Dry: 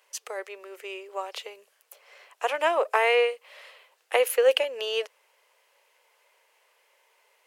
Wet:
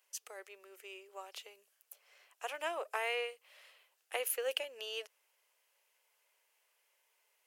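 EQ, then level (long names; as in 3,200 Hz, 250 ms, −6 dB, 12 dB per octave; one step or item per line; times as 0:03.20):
octave-band graphic EQ 250/500/1,000/2,000/4,000/8,000 Hz −9/−11/−9/−7/−6/−3 dB
−2.5 dB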